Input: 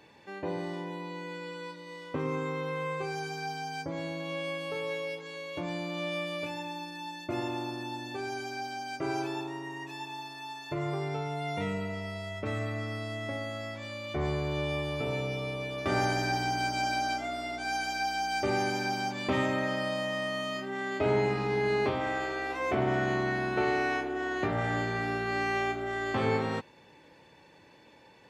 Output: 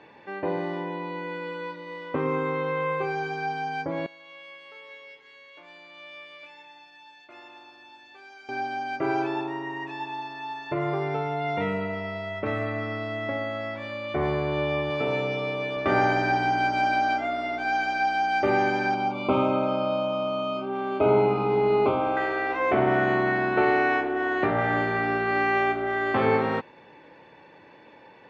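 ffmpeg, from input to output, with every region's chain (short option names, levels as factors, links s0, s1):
-filter_complex "[0:a]asettb=1/sr,asplit=3[s0][s1][s2];[s0]atrim=end=4.064[s3];[s1]atrim=start=4.06:end=8.49,asetpts=PTS-STARTPTS,afade=t=in:d=0.004:c=qsin,afade=t=out:st=4.426:d=0.004:c=qsin,lowpass=f=3900:p=1,aderivative,asplit=6[s4][s5][s6][s7][s8][s9];[s5]adelay=175,afreqshift=-150,volume=0.0891[s10];[s6]adelay=350,afreqshift=-300,volume=0.0537[s11];[s7]adelay=525,afreqshift=-450,volume=0.032[s12];[s8]adelay=700,afreqshift=-600,volume=0.0193[s13];[s9]adelay=875,afreqshift=-750,volume=0.0116[s14];[s4][s10][s11][s12][s13][s14]amix=inputs=6:normalize=0,atrim=end_sample=195363[s15];[s2]atrim=start=8.486[s16];[s3][s15]acrossfade=d=0.004:c1=hsin:c2=qsin[s17];[s17][s16]acrossfade=d=0.004:c1=qsin:c2=hsin,asettb=1/sr,asplit=3[s18][s19][s20];[s18]atrim=end=14.904[s21];[s19]atrim=start=14.9:end=15.77,asetpts=PTS-STARTPTS,afade=t=in:d=0.004:c=qsin,afade=t=out:st=0.866:d=0.004:c=qsin,highpass=110,highshelf=f=4300:g=7[s22];[s20]atrim=start=15.766[s23];[s21][s22]acrossfade=d=0.004:c1=hsin:c2=qsin[s24];[s24][s23]acrossfade=d=0.004:c1=qsin:c2=hsin,asettb=1/sr,asplit=3[s25][s26][s27];[s25]atrim=end=18.944[s28];[s26]atrim=start=18.94:end=22.17,asetpts=PTS-STARTPTS,afade=t=in:d=0.004:c=qsin,afade=t=out:st=3.226:d=0.004:c=qsin,asuperstop=centerf=1800:order=8:qfactor=2.8,aemphasis=mode=reproduction:type=50fm[s29];[s27]atrim=start=22.166[s30];[s28][s29]acrossfade=d=0.004:c1=hsin:c2=qsin[s31];[s31][s30]acrossfade=d=0.004:c1=qsin:c2=hsin,lowpass=2400,lowshelf=f=150:g=-11.5,volume=2.51"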